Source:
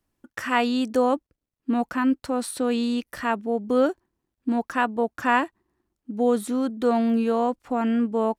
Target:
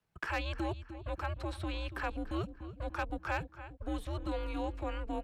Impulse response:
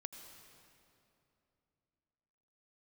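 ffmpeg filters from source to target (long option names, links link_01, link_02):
-filter_complex "[0:a]acrossover=split=250|3000[link_01][link_02][link_03];[link_02]acompressor=threshold=-39dB:ratio=2.5[link_04];[link_01][link_04][link_03]amix=inputs=3:normalize=0,highshelf=frequency=2700:gain=3.5,asplit=2[link_05][link_06];[link_06]adelay=469,lowpass=frequency=2600:poles=1,volume=-14dB,asplit=2[link_07][link_08];[link_08]adelay=469,lowpass=frequency=2600:poles=1,volume=0.46,asplit=2[link_09][link_10];[link_10]adelay=469,lowpass=frequency=2600:poles=1,volume=0.46,asplit=2[link_11][link_12];[link_12]adelay=469,lowpass=frequency=2600:poles=1,volume=0.46[link_13];[link_07][link_09][link_11][link_13]amix=inputs=4:normalize=0[link_14];[link_05][link_14]amix=inputs=2:normalize=0,atempo=1.6,acrossover=split=530[link_15][link_16];[link_15]asoftclip=type=tanh:threshold=-34dB[link_17];[link_17][link_16]amix=inputs=2:normalize=0,acrossover=split=230 4100:gain=0.251 1 0.251[link_18][link_19][link_20];[link_18][link_19][link_20]amix=inputs=3:normalize=0,acrossover=split=3600[link_21][link_22];[link_22]acompressor=threshold=-56dB:ratio=4:attack=1:release=60[link_23];[link_21][link_23]amix=inputs=2:normalize=0,asoftclip=type=hard:threshold=-24.5dB,afreqshift=-180"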